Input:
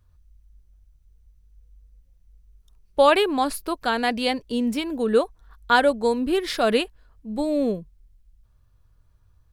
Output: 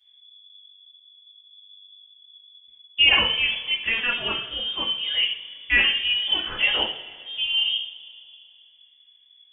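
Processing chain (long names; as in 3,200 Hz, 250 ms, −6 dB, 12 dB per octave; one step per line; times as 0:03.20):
voice inversion scrambler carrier 3,400 Hz
coupled-rooms reverb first 0.42 s, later 2.5 s, from −20 dB, DRR −5 dB
level −6.5 dB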